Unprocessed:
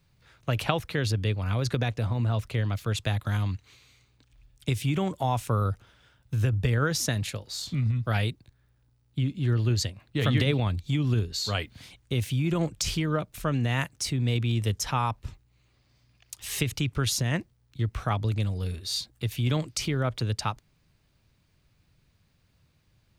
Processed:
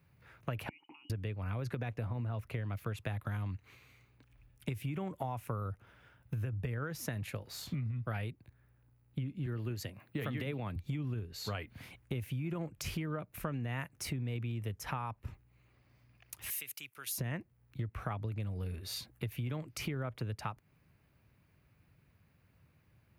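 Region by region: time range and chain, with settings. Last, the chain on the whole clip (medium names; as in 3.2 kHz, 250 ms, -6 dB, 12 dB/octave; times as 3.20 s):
0.69–1.10 s: frequency inversion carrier 3 kHz + compression 20:1, threshold -35 dBFS + vowel filter u
9.46–10.76 s: high-pass 130 Hz + treble shelf 10 kHz +8.5 dB
16.50–17.18 s: high-pass 92 Hz + differentiator
whole clip: high-pass 62 Hz; high-order bell 5.3 kHz -11 dB; compression 6:1, threshold -35 dBFS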